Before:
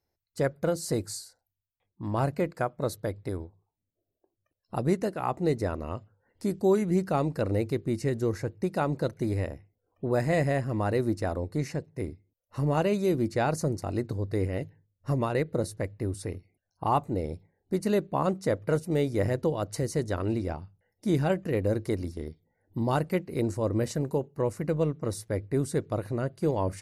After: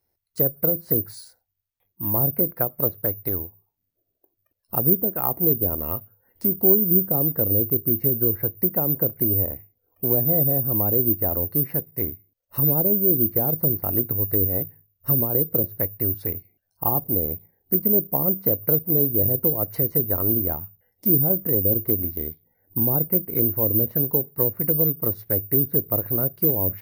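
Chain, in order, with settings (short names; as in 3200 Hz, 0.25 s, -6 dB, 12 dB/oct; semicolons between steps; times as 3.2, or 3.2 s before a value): treble ducked by the level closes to 520 Hz, closed at -23 dBFS; careless resampling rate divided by 3×, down filtered, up zero stuff; gain +2.5 dB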